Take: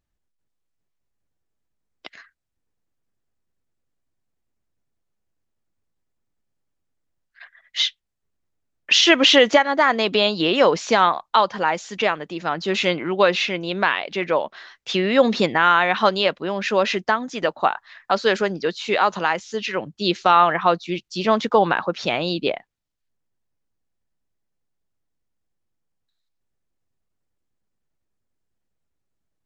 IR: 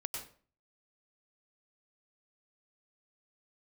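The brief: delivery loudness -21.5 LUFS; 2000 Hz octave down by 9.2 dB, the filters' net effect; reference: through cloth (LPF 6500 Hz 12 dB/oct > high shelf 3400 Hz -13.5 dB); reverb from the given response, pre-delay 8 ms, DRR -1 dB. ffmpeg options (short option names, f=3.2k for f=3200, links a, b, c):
-filter_complex "[0:a]equalizer=f=2k:t=o:g=-8,asplit=2[a][b];[1:a]atrim=start_sample=2205,adelay=8[c];[b][c]afir=irnorm=-1:irlink=0,volume=1dB[d];[a][d]amix=inputs=2:normalize=0,lowpass=6.5k,highshelf=f=3.4k:g=-13.5,volume=-2dB"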